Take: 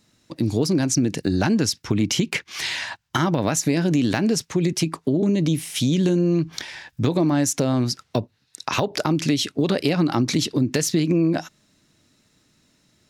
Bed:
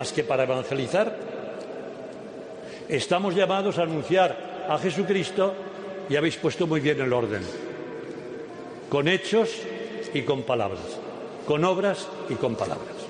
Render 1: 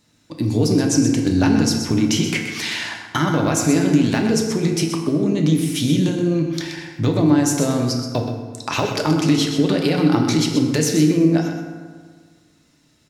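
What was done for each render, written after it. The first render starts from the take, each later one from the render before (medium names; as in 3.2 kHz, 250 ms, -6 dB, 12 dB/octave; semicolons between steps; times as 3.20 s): delay 127 ms -9 dB; FDN reverb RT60 1.7 s, low-frequency decay 1×, high-frequency decay 0.55×, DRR 2 dB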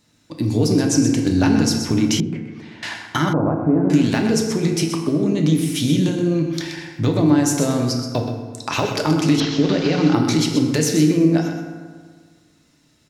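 2.20–2.83 s: band-pass filter 160 Hz, Q 0.7; 3.33–3.90 s: low-pass 1.1 kHz 24 dB/octave; 9.40–10.14 s: one-bit delta coder 32 kbps, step -26.5 dBFS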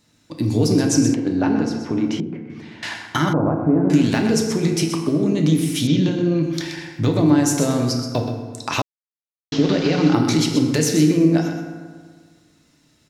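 1.14–2.50 s: band-pass filter 580 Hz, Q 0.53; 5.87–6.43 s: low-pass 5.4 kHz 24 dB/octave; 8.82–9.52 s: mute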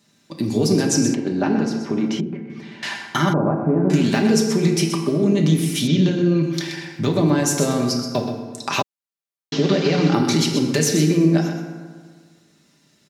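high-pass 110 Hz; comb 5.1 ms, depth 51%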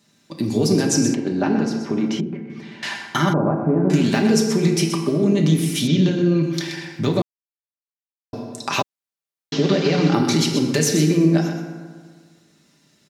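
7.22–8.33 s: mute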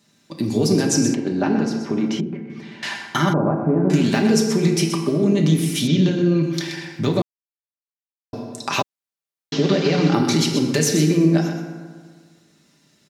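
no audible change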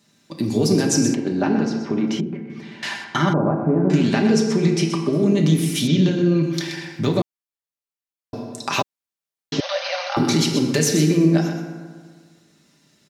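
1.46–2.06 s: low-pass 8.9 kHz -> 4.4 kHz; 3.04–5.13 s: distance through air 61 m; 9.60–10.17 s: brick-wall FIR band-pass 510–6500 Hz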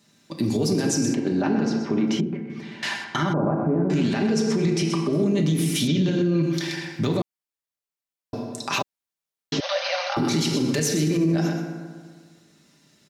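peak limiter -14 dBFS, peak gain reduction 9 dB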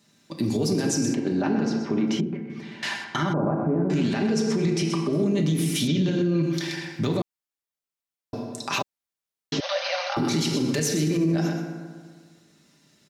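trim -1.5 dB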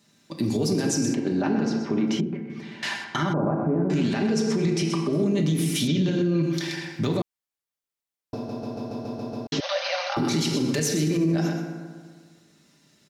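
8.35 s: stutter in place 0.14 s, 8 plays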